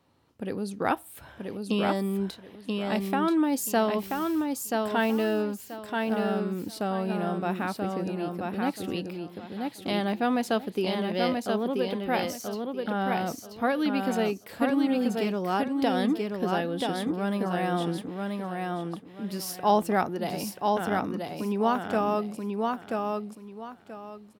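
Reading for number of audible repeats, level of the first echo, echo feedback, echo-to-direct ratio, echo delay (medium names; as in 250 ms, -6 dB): 3, -3.5 dB, 25%, -3.0 dB, 982 ms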